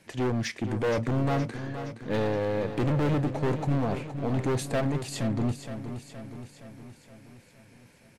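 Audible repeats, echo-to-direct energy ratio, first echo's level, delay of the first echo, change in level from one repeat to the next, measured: 6, -8.5 dB, -10.0 dB, 0.469 s, -5.0 dB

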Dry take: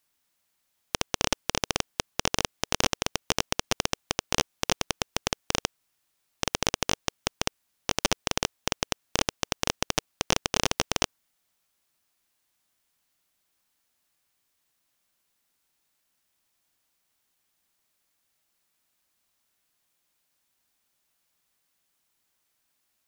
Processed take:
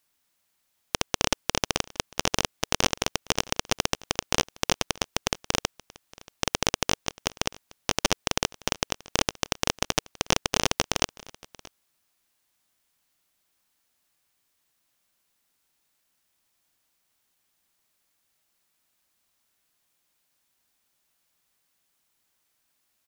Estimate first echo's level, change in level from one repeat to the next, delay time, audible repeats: -23.0 dB, no steady repeat, 0.631 s, 1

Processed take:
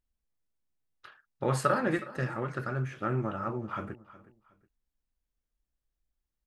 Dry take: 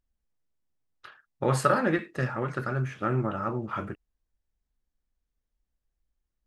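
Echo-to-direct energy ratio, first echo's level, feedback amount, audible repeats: -17.5 dB, -18.0 dB, 28%, 2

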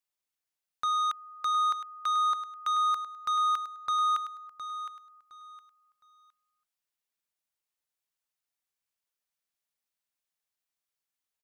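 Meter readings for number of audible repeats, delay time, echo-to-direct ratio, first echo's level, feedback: 3, 0.713 s, -10.5 dB, -11.0 dB, 26%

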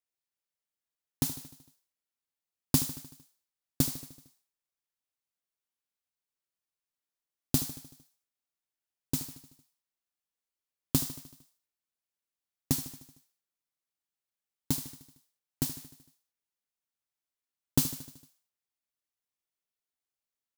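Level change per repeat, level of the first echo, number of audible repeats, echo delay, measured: -4.5 dB, -14.0 dB, 5, 76 ms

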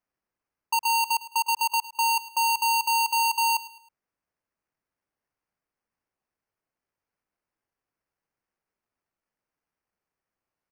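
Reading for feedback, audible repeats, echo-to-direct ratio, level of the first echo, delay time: 36%, 3, -16.5 dB, -17.0 dB, 0.106 s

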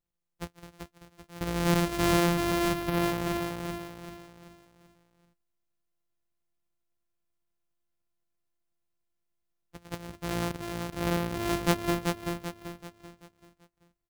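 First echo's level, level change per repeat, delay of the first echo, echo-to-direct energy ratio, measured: -4.5 dB, -8.0 dB, 0.386 s, -3.5 dB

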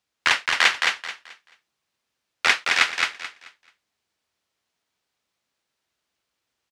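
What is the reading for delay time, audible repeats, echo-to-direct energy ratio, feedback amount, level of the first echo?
0.217 s, 3, -3.5 dB, 26%, -4.0 dB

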